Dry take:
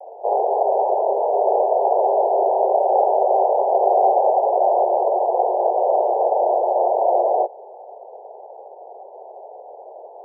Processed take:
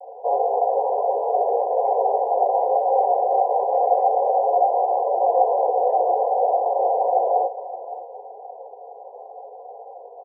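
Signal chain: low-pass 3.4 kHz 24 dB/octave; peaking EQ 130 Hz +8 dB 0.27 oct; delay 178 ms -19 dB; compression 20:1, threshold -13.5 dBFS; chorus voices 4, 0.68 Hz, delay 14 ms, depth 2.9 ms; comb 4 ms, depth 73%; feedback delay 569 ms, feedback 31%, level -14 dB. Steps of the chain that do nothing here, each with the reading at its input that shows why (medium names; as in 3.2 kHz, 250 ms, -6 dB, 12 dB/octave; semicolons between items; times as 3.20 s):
low-pass 3.4 kHz: input has nothing above 1.1 kHz; peaking EQ 130 Hz: input has nothing below 340 Hz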